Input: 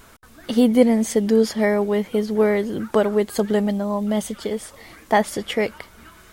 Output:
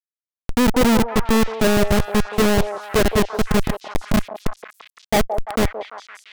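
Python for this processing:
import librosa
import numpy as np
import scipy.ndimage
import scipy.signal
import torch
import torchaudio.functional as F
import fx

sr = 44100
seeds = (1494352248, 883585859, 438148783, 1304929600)

y = fx.schmitt(x, sr, flips_db=-15.5)
y = fx.leveller(y, sr, passes=3)
y = fx.echo_stepped(y, sr, ms=171, hz=650.0, octaves=0.7, feedback_pct=70, wet_db=-4.5)
y = F.gain(torch.from_numpy(y), 2.5).numpy()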